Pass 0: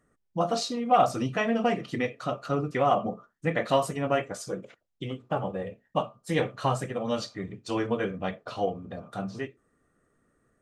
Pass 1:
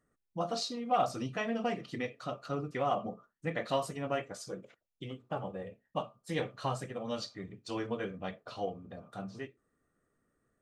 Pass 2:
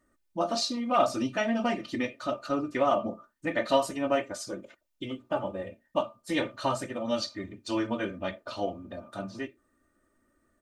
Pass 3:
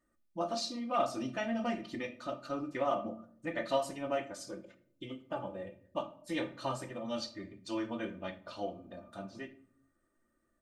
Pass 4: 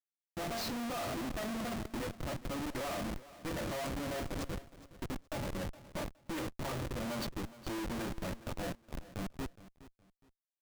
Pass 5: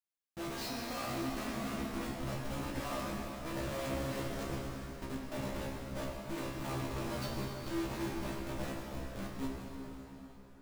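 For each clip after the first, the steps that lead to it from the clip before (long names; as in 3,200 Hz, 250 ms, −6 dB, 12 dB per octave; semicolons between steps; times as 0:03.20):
dynamic equaliser 4,500 Hz, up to +5 dB, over −52 dBFS, Q 1.7; level −8 dB
comb filter 3.3 ms, depth 76%; level +5 dB
rectangular room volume 930 cubic metres, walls furnished, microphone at 0.81 metres; level −8 dB
comparator with hysteresis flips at −40.5 dBFS; repeating echo 416 ms, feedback 26%, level −17 dB; level +1 dB
tuned comb filter 67 Hz, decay 0.2 s, harmonics all, mix 100%; dense smooth reverb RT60 4.3 s, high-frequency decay 0.8×, DRR −1.5 dB; level +2 dB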